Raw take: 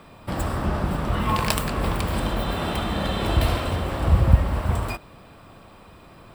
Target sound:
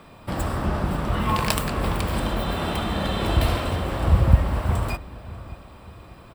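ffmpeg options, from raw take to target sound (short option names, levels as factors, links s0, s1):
-filter_complex "[0:a]asplit=2[s0][s1];[s1]adelay=593,lowpass=f=2000:p=1,volume=0.15,asplit=2[s2][s3];[s3]adelay=593,lowpass=f=2000:p=1,volume=0.4,asplit=2[s4][s5];[s5]adelay=593,lowpass=f=2000:p=1,volume=0.4[s6];[s0][s2][s4][s6]amix=inputs=4:normalize=0"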